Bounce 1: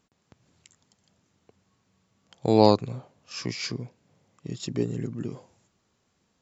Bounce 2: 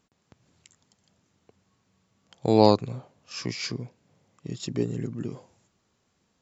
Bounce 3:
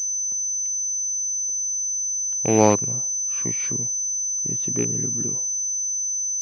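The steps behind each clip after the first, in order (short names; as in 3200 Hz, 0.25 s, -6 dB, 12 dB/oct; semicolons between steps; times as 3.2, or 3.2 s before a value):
nothing audible
rattling part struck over -23 dBFS, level -21 dBFS; in parallel at -7 dB: backlash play -38 dBFS; on the sum: pulse-width modulation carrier 6100 Hz; gain -2 dB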